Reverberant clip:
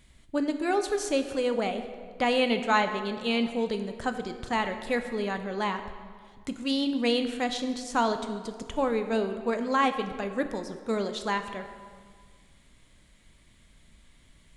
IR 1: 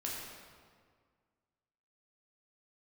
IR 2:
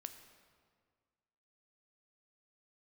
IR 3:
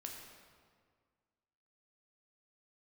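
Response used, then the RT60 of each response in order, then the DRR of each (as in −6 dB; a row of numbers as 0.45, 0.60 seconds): 2; 1.8, 1.8, 1.8 seconds; −4.5, 7.5, 0.0 decibels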